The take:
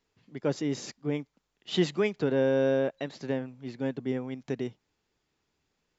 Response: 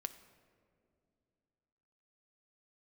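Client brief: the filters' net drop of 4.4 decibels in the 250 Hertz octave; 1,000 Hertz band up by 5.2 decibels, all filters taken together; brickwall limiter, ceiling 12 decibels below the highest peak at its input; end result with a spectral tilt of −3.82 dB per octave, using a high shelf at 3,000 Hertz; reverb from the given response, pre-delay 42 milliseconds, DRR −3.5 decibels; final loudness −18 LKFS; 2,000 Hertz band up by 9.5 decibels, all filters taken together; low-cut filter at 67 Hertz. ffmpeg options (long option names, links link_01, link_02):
-filter_complex "[0:a]highpass=67,equalizer=frequency=250:width_type=o:gain=-6,equalizer=frequency=1000:width_type=o:gain=4.5,equalizer=frequency=2000:width_type=o:gain=8.5,highshelf=frequency=3000:gain=6,alimiter=limit=-23dB:level=0:latency=1,asplit=2[link_01][link_02];[1:a]atrim=start_sample=2205,adelay=42[link_03];[link_02][link_03]afir=irnorm=-1:irlink=0,volume=6dB[link_04];[link_01][link_04]amix=inputs=2:normalize=0,volume=12.5dB"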